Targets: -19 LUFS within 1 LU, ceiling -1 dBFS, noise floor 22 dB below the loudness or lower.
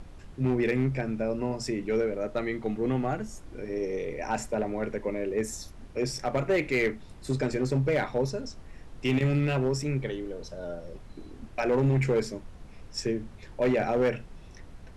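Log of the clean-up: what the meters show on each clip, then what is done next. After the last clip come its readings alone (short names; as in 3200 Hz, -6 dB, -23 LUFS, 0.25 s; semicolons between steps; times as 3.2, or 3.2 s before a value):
clipped 1.0%; flat tops at -19.0 dBFS; noise floor -48 dBFS; noise floor target -52 dBFS; loudness -29.5 LUFS; peak -19.0 dBFS; loudness target -19.0 LUFS
-> clip repair -19 dBFS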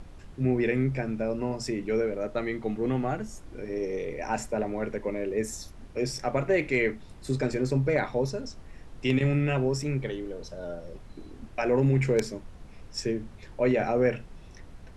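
clipped 0.0%; noise floor -48 dBFS; noise floor target -51 dBFS
-> noise print and reduce 6 dB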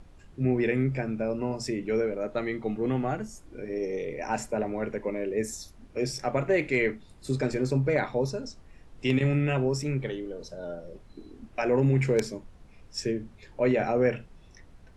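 noise floor -53 dBFS; loudness -29.0 LUFS; peak -10.0 dBFS; loudness target -19.0 LUFS
-> gain +10 dB; limiter -1 dBFS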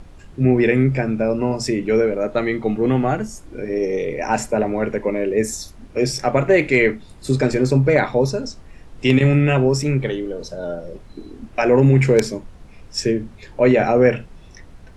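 loudness -19.0 LUFS; peak -1.0 dBFS; noise floor -43 dBFS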